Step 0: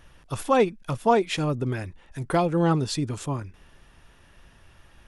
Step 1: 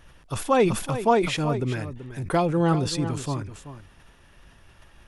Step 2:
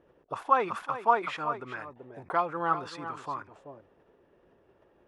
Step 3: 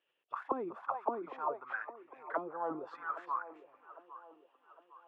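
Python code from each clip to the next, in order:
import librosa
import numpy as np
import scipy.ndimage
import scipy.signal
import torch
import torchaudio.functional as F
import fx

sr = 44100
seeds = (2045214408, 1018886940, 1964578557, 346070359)

y1 = x + 10.0 ** (-12.5 / 20.0) * np.pad(x, (int(382 * sr / 1000.0), 0))[:len(x)]
y1 = fx.sustainer(y1, sr, db_per_s=80.0)
y2 = fx.auto_wah(y1, sr, base_hz=400.0, top_hz=1200.0, q=2.7, full_db=-24.5, direction='up')
y2 = F.gain(torch.from_numpy(y2), 4.5).numpy()
y3 = fx.auto_wah(y2, sr, base_hz=290.0, top_hz=3000.0, q=4.4, full_db=-23.0, direction='down')
y3 = fx.echo_wet_bandpass(y3, sr, ms=807, feedback_pct=47, hz=610.0, wet_db=-13.5)
y3 = F.gain(torch.from_numpy(y3), 3.0).numpy()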